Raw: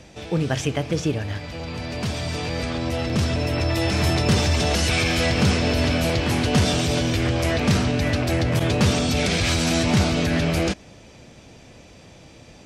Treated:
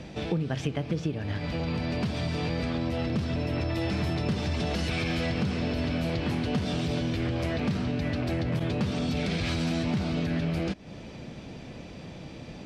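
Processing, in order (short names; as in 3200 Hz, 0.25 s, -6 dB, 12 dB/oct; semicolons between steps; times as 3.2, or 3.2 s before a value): EQ curve 110 Hz 0 dB, 160 Hz +6 dB, 540 Hz 0 dB, 4400 Hz -2 dB, 6600 Hz -10 dB; compressor, threshold -29 dBFS, peak gain reduction 17 dB; gain +2.5 dB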